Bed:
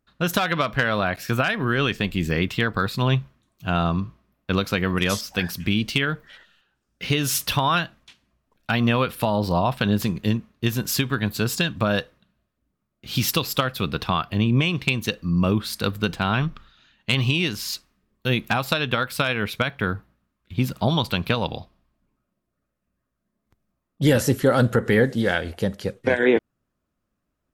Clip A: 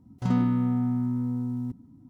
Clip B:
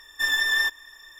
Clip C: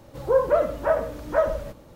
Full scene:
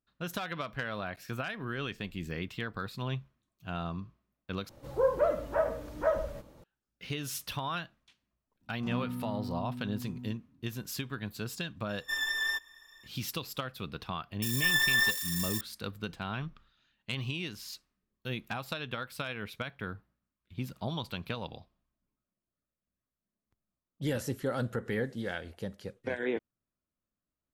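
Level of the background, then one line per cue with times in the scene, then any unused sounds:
bed −14.5 dB
0:04.69: overwrite with C −7 dB
0:08.61: mix in A −13 dB
0:11.89: mix in B −9 dB
0:14.42: mix in B −4 dB + spike at every zero crossing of −23.5 dBFS

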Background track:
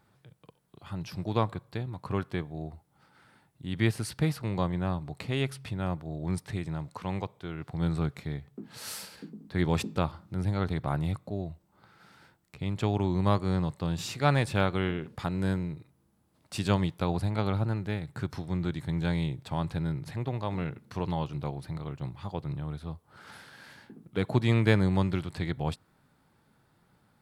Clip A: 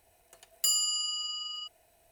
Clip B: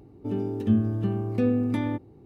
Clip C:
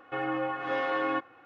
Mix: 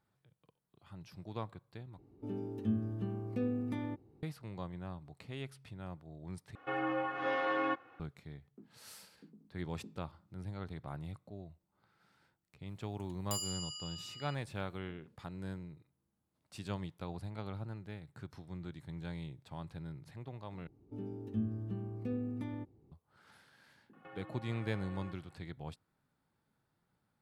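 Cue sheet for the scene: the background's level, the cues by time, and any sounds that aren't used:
background track −14 dB
0:01.98: overwrite with B −11.5 dB
0:06.55: overwrite with C −4 dB
0:12.67: mix in A −12.5 dB
0:20.67: overwrite with B −17 dB + low-shelf EQ 250 Hz +5.5 dB
0:23.93: mix in C −11.5 dB + downward compressor 4 to 1, threshold −39 dBFS

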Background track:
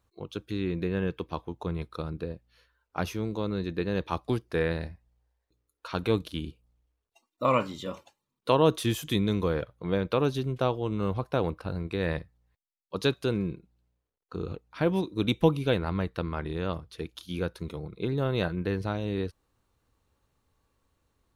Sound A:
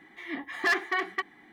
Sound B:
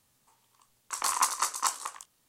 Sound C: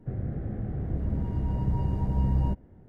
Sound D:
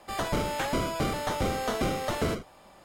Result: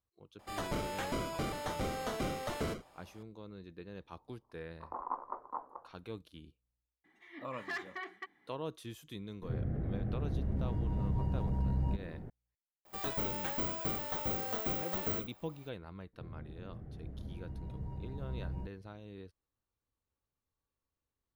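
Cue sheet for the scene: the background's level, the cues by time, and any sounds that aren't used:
background track −18.5 dB
0:00.39: mix in D −8 dB
0:03.90: mix in B −0.5 dB + inverse Chebyshev low-pass filter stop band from 3,600 Hz, stop band 70 dB
0:07.04: mix in A −14.5 dB + high-shelf EQ 10,000 Hz −4 dB
0:09.42: mix in C −8.5 dB + envelope flattener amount 50%
0:12.85: mix in D −10.5 dB + bad sample-rate conversion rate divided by 2×, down none, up zero stuff
0:16.13: mix in C −15.5 dB

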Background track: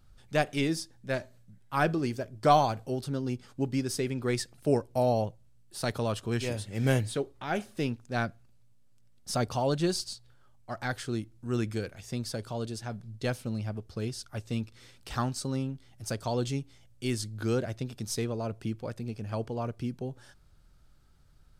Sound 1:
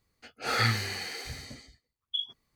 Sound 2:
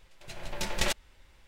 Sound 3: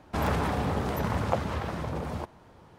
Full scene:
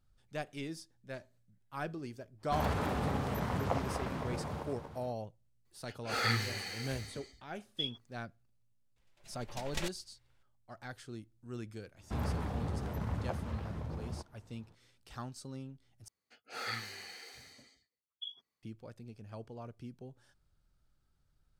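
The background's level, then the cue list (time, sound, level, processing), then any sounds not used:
background track −13 dB
0:02.38: mix in 3 −7 dB, fades 0.10 s + feedback delay that plays each chunk backwards 124 ms, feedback 67%, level −6.5 dB
0:05.65: mix in 1 −5 dB
0:08.96: mix in 2 −9 dB + expander for the loud parts, over −38 dBFS
0:11.97: mix in 3 −14 dB + low-shelf EQ 200 Hz +11 dB
0:16.08: overwrite with 1 −11.5 dB + high-pass filter 300 Hz 6 dB per octave

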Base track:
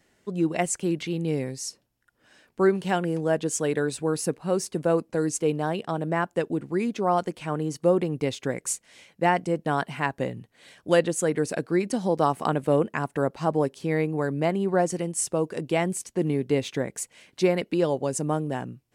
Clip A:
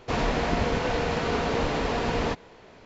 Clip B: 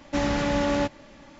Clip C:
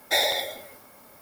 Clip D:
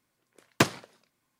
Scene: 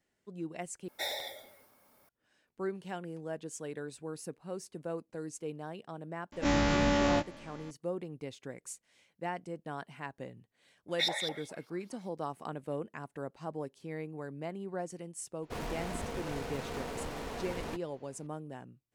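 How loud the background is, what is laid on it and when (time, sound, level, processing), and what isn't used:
base track −15.5 dB
0:00.88: overwrite with C −14 dB
0:06.32: mix in B −5.5 dB + every bin's largest magnitude spread in time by 60 ms
0:10.88: mix in C −3 dB + auto-filter band-pass saw up 4.9 Hz 730–5,600 Hz
0:15.42: mix in A −13.5 dB + stylus tracing distortion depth 0.19 ms
not used: D

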